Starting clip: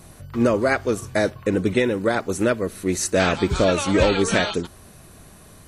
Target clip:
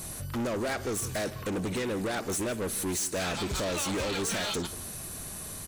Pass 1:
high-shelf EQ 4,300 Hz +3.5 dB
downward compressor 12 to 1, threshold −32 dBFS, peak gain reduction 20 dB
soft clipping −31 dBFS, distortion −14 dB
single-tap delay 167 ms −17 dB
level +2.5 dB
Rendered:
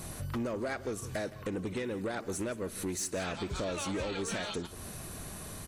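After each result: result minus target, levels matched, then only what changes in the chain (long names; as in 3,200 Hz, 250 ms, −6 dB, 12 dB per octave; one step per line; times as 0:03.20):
downward compressor: peak gain reduction +9.5 dB; 8,000 Hz band −2.5 dB
change: downward compressor 12 to 1, threshold −21.5 dBFS, peak gain reduction 10.5 dB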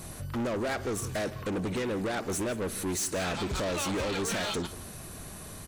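8,000 Hz band −2.5 dB
change: high-shelf EQ 4,300 Hz +12 dB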